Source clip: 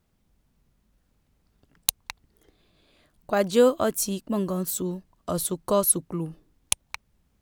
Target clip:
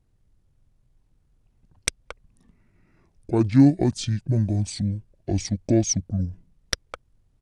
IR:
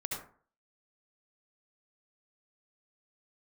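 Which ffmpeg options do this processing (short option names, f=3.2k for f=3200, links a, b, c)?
-af "asetrate=24750,aresample=44100,atempo=1.7818,lowshelf=f=480:g=11,volume=-5dB"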